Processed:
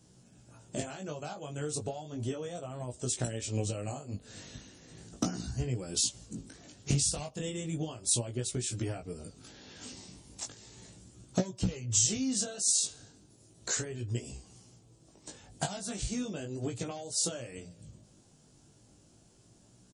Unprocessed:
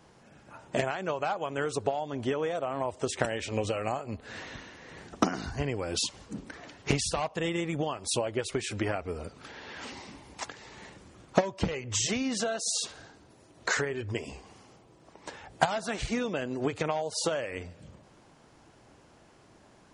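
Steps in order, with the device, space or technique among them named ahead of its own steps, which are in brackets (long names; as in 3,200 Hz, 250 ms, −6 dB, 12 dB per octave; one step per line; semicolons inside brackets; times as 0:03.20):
graphic EQ with 10 bands 125 Hz +5 dB, 500 Hz −4 dB, 1,000 Hz −10 dB, 2,000 Hz −10 dB, 8,000 Hz +10 dB
double-tracked vocal (double-tracking delay 16 ms −12.5 dB; chorus effect 0.35 Hz, delay 16.5 ms, depth 3.9 ms)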